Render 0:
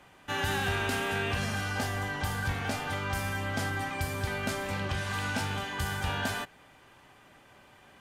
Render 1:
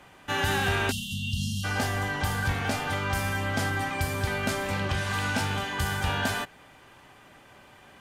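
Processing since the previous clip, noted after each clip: spectral selection erased 0.91–1.64 s, 240–2700 Hz; trim +4 dB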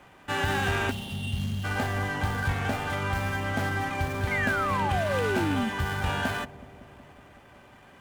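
median filter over 9 samples; bucket-brigade echo 186 ms, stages 1024, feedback 75%, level -15.5 dB; painted sound fall, 4.31–5.70 s, 210–2200 Hz -29 dBFS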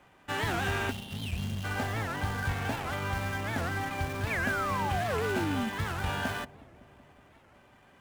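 in parallel at -9 dB: bit crusher 5-bit; on the sum: warped record 78 rpm, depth 250 cents; trim -6.5 dB

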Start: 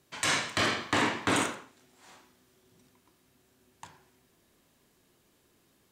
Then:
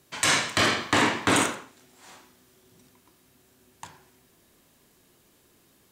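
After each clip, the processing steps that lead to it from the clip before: treble shelf 8 kHz +4.5 dB; trim +5 dB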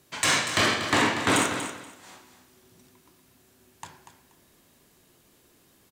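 in parallel at -5 dB: hard clipper -21 dBFS, distortion -9 dB; on the sum: feedback delay 239 ms, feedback 20%, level -10 dB; trim -3.5 dB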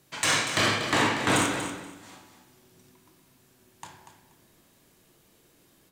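simulated room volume 330 m³, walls mixed, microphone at 0.63 m; trim -2 dB

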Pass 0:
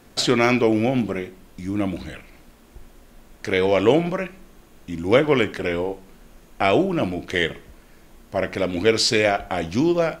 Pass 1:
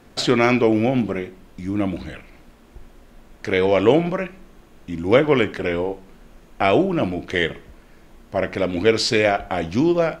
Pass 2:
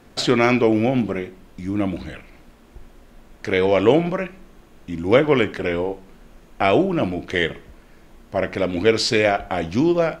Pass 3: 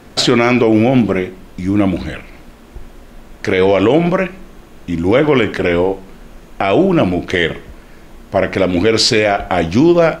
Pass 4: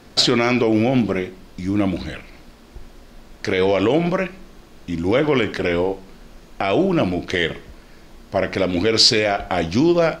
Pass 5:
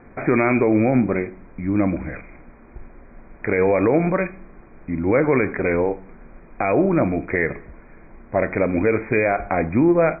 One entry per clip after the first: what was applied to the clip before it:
treble shelf 5.5 kHz -8.5 dB; trim +1.5 dB
no audible change
loudness maximiser +10.5 dB; trim -1 dB
peaking EQ 4.7 kHz +7 dB 0.82 oct; trim -6 dB
brick-wall FIR low-pass 2.5 kHz

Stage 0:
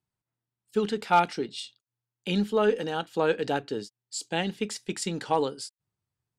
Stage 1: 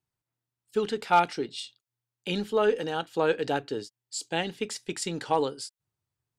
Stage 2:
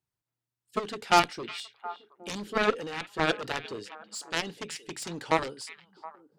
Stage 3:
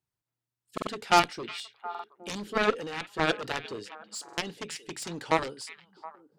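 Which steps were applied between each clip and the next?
peaking EQ 200 Hz -7 dB 0.31 oct
Chebyshev shaper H 7 -12 dB, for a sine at -9 dBFS; repeats whose band climbs or falls 360 ms, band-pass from 2.6 kHz, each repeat -1.4 oct, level -12 dB
buffer glitch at 0.73/1.90/4.24 s, samples 2048, times 2

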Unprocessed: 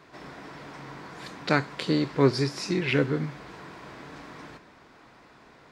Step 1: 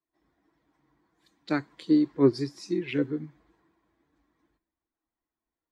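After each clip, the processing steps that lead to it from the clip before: expander on every frequency bin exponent 1.5; peaking EQ 320 Hz +13.5 dB 0.61 oct; three bands expanded up and down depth 40%; trim -8 dB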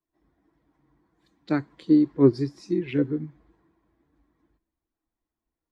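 tilt EQ -2 dB/octave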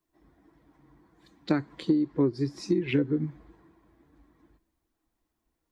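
compression 16:1, threshold -28 dBFS, peak gain reduction 17.5 dB; trim +7 dB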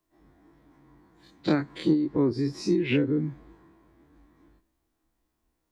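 every event in the spectrogram widened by 60 ms; trim -1.5 dB

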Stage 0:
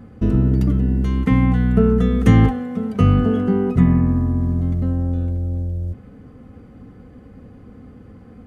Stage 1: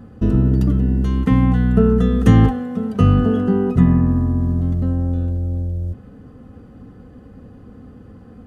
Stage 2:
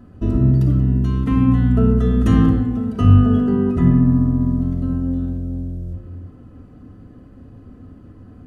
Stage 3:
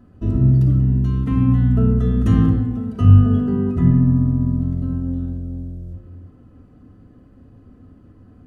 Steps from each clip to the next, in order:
band-stop 2.2 kHz, Q 5.4; trim +1 dB
simulated room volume 3200 m³, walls furnished, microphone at 2.9 m; trim -5 dB
dynamic bell 110 Hz, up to +7 dB, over -27 dBFS, Q 0.85; trim -5 dB

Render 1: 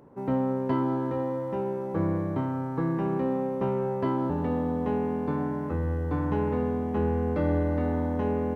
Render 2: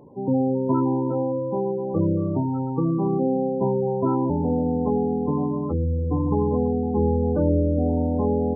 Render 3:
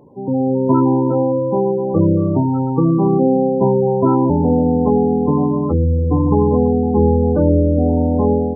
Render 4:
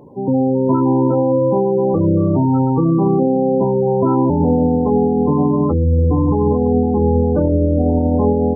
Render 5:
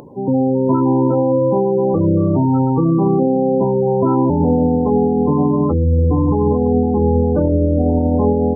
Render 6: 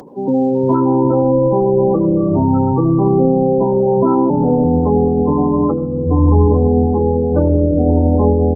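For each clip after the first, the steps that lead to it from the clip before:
spectral gate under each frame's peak -15 dB strong; trim +5.5 dB
level rider gain up to 7 dB; trim +1.5 dB
peak limiter -12 dBFS, peak gain reduction 10.5 dB; trim +4.5 dB
upward compressor, threshold -35 dBFS
bands offset in time highs, lows 350 ms, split 150 Hz; on a send at -18 dB: reverberation RT60 1.3 s, pre-delay 71 ms; on the sum: trim +2 dB; Opus 20 kbps 48 kHz

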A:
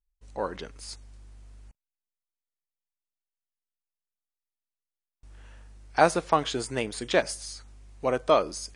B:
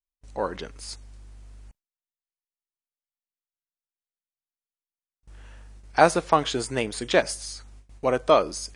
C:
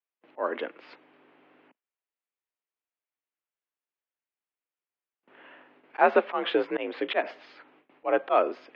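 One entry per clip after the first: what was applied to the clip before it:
gate with hold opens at -43 dBFS; trim +3 dB
mistuned SSB +54 Hz 220–2900 Hz; slow attack 162 ms; trim +4.5 dB

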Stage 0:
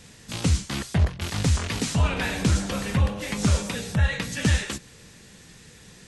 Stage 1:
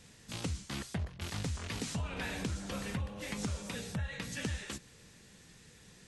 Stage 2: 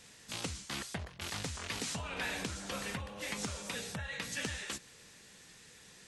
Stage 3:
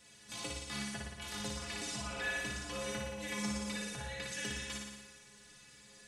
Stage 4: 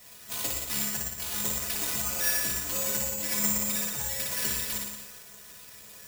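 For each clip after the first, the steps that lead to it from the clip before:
compression 10:1, threshold -24 dBFS, peak gain reduction 9.5 dB; trim -9 dB
bass shelf 310 Hz -11.5 dB; in parallel at -10 dB: overload inside the chain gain 33.5 dB; on the sum: trim +1 dB
inharmonic resonator 62 Hz, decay 0.43 s, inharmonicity 0.03; on a send: flutter echo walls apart 9.9 m, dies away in 1.1 s; on the sum: trim +5 dB
careless resampling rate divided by 6×, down none, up zero stuff; trim +2.5 dB

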